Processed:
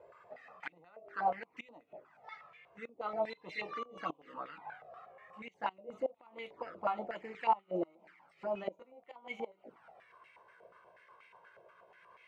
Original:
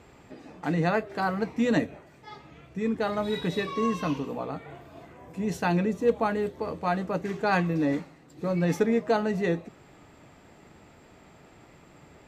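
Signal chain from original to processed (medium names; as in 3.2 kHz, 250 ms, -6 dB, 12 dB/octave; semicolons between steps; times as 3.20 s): pitch bend over the whole clip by +3 st starting unshifted; touch-sensitive flanger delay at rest 2.1 ms, full sweep at -26 dBFS; inverted gate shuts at -20 dBFS, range -24 dB; step-sequenced band-pass 8.3 Hz 630–2200 Hz; trim +8 dB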